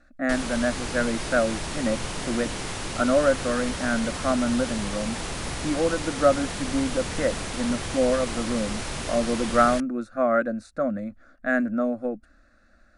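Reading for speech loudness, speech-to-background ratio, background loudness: -26.0 LUFS, 5.5 dB, -31.5 LUFS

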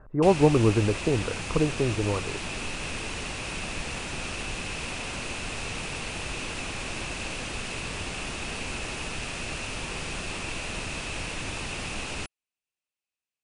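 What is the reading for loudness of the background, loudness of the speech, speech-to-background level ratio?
-33.0 LUFS, -25.0 LUFS, 8.0 dB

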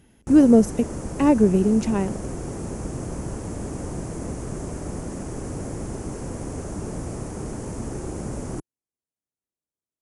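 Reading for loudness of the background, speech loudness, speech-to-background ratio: -32.5 LUFS, -19.0 LUFS, 13.5 dB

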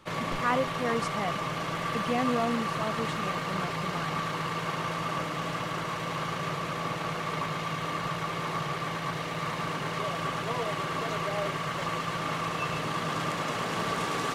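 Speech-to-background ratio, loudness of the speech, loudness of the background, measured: -1.5 dB, -33.0 LUFS, -31.5 LUFS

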